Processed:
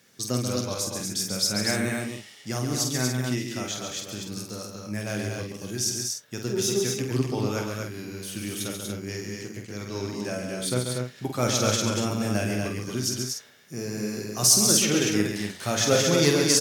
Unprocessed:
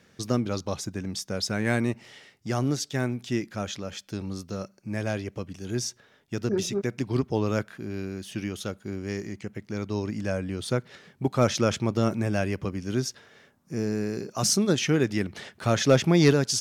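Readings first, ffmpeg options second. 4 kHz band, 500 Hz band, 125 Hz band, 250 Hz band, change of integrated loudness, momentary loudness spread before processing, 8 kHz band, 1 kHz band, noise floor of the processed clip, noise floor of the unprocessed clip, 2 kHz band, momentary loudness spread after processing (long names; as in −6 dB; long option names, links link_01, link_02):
+6.0 dB, −0.5 dB, −1.5 dB, −1.0 dB, +2.0 dB, 12 LU, +9.0 dB, 0.0 dB, −48 dBFS, −61 dBFS, +1.5 dB, 15 LU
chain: -filter_complex "[0:a]highpass=91,aemphasis=mode=production:type=75kf,flanger=delay=7.5:depth=2.5:regen=66:speed=0.29:shape=sinusoidal,asplit=2[link_01][link_02];[link_02]adelay=48,volume=-5.5dB[link_03];[link_01][link_03]amix=inputs=2:normalize=0,asplit=2[link_04][link_05];[link_05]aecho=0:1:137|239.1:0.501|0.631[link_06];[link_04][link_06]amix=inputs=2:normalize=0"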